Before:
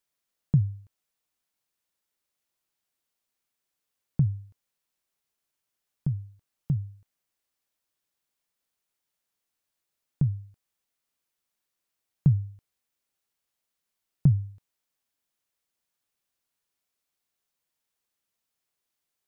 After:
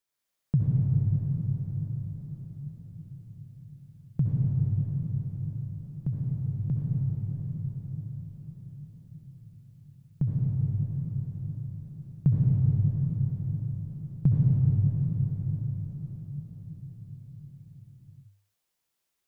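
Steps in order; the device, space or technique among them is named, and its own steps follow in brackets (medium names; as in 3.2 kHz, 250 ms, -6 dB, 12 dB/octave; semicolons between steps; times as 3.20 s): cathedral (reverberation RT60 6.1 s, pre-delay 59 ms, DRR -5.5 dB); trim -3 dB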